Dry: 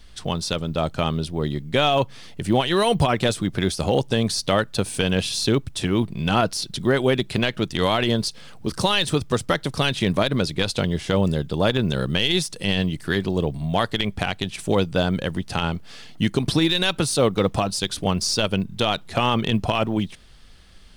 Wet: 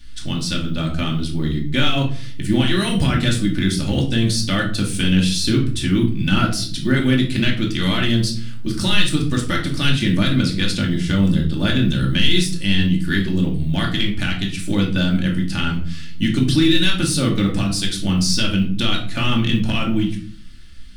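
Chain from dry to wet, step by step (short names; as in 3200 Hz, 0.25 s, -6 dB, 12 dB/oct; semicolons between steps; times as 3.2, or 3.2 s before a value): band shelf 680 Hz -12.5 dB; shoebox room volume 500 m³, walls furnished, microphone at 2.5 m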